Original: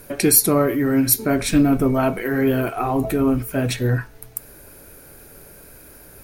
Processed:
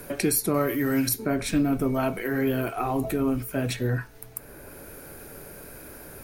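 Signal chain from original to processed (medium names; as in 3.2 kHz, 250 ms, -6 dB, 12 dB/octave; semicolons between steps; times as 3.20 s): 0.54–1.09 s: treble shelf 2.1 kHz +10.5 dB; three bands compressed up and down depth 40%; trim -6.5 dB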